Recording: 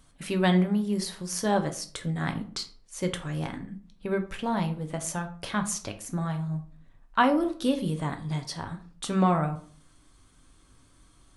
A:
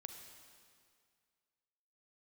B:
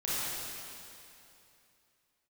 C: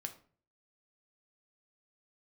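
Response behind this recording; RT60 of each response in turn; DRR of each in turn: C; 2.1, 2.8, 0.45 seconds; 5.0, −10.5, 5.5 decibels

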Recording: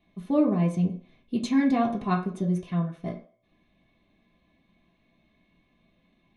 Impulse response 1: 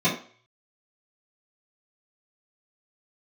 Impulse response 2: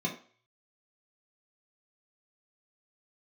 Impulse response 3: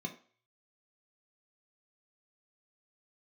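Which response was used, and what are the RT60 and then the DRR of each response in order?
2; 0.45, 0.45, 0.45 seconds; −12.5, −2.5, 2.5 decibels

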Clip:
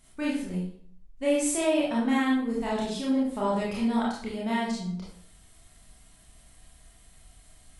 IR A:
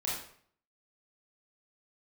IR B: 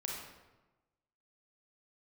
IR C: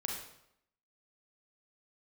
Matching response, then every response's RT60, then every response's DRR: A; 0.55, 1.1, 0.75 seconds; −6.5, −2.5, −0.5 decibels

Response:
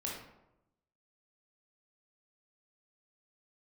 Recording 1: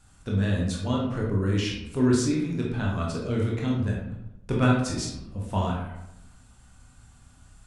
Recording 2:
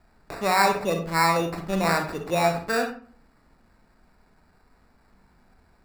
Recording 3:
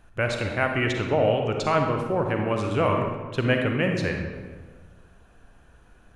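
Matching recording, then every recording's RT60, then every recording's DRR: 1; 0.90, 0.50, 1.5 seconds; −3.5, 4.5, 2.5 decibels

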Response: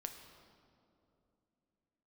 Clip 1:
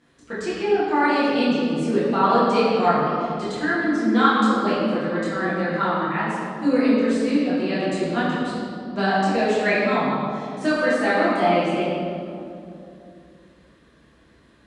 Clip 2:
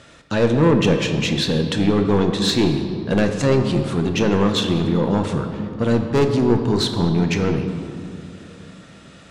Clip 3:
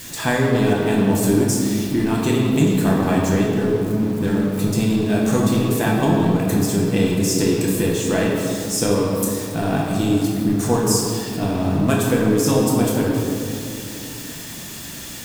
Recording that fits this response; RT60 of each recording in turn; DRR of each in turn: 2; 2.7, 2.8, 2.7 seconds; −11.0, 5.0, −3.5 decibels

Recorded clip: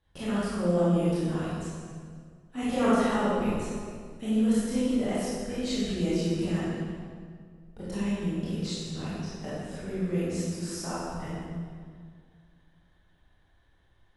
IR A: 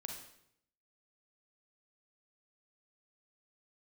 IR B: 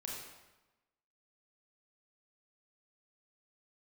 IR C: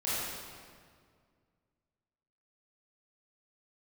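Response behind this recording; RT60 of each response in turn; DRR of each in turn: C; 0.70, 1.1, 2.0 seconds; 2.0, −3.0, −11.0 decibels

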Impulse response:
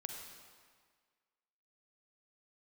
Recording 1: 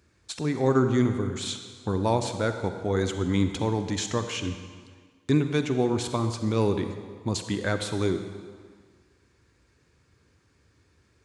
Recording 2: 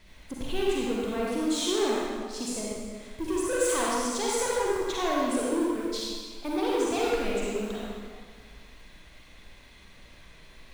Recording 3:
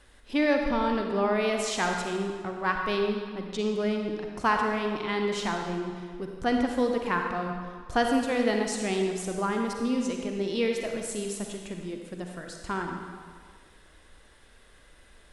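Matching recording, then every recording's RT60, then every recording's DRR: 3; 1.7, 1.7, 1.7 seconds; 7.5, −5.5, 2.5 decibels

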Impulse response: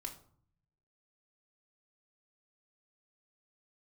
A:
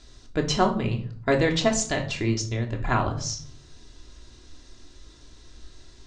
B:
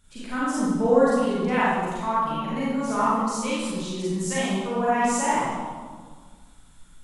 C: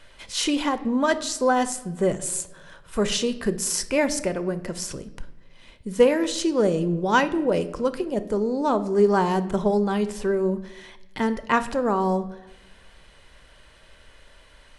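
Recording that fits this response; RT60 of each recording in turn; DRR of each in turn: A; 0.55 s, 1.6 s, non-exponential decay; 1.0, −9.5, 11.0 decibels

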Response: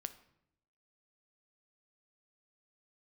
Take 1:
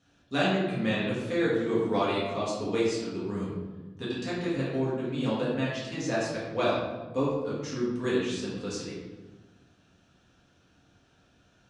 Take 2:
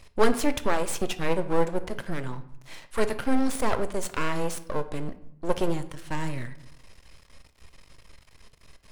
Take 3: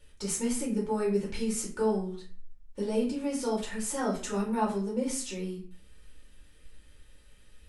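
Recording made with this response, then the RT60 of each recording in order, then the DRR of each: 2; 1.2, 0.75, 0.45 seconds; −8.0, 10.5, −4.5 decibels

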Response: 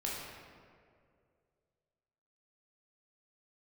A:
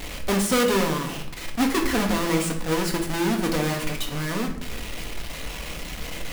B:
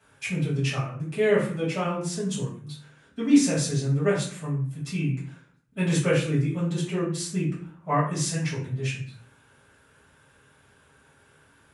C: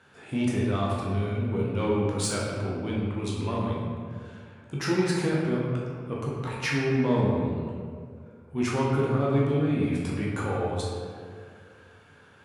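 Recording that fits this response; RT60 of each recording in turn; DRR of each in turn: C; 0.80, 0.45, 2.3 seconds; 1.5, −9.5, −5.0 decibels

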